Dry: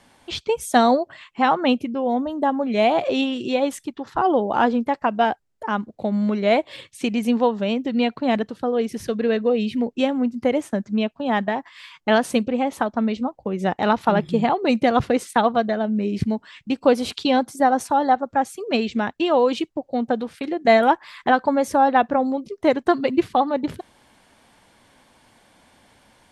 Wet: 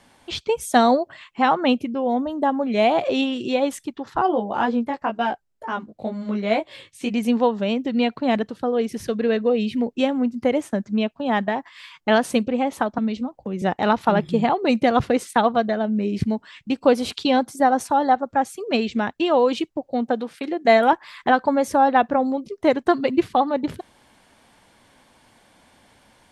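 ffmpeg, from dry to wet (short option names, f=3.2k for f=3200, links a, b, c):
-filter_complex "[0:a]asplit=3[a][b][c];[a]afade=t=out:st=4.26:d=0.02[d];[b]flanger=delay=16.5:depth=2.7:speed=2.1,afade=t=in:st=4.26:d=0.02,afade=t=out:st=7.09:d=0.02[e];[c]afade=t=in:st=7.09:d=0.02[f];[d][e][f]amix=inputs=3:normalize=0,asettb=1/sr,asplit=3[g][h][i];[g]atrim=end=12.984[j];[h]atrim=start=12.98:end=13.62,asetpts=PTS-STARTPTS,afade=t=in:d=0.004:c=qsin,afade=t=out:st=0.636:d=0.004:c=qsin,acrossover=split=280|3000[k][l][m];[l]acompressor=threshold=-31dB:ratio=6:attack=3.2:release=140:knee=2.83:detection=peak[n];[k][n][m]amix=inputs=3:normalize=0[o];[i]atrim=start=13.616[p];[j][o]acrossfade=d=0.004:c1=hsin:c2=qsin[q];[q][p]acrossfade=d=0.004:c1=qsin:c2=hsin,asettb=1/sr,asplit=3[r][s][t];[r]atrim=end=20.064[u];[s]atrim=start=20.06:end=20.93,asetpts=PTS-STARTPTS,afade=t=in:d=0.004:c=qsin,afade=t=out:st=0.866:d=0.004:c=qsin,highpass=190[v];[t]atrim=start=20.926[w];[u][v]acrossfade=d=0.004:c1=hsin:c2=qsin[x];[x][w]acrossfade=d=0.004:c1=qsin:c2=hsin"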